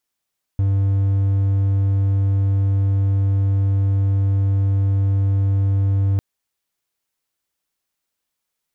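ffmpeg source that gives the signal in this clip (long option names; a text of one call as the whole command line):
ffmpeg -f lavfi -i "aevalsrc='0.237*(1-4*abs(mod(98*t+0.25,1)-0.5))':duration=5.6:sample_rate=44100" out.wav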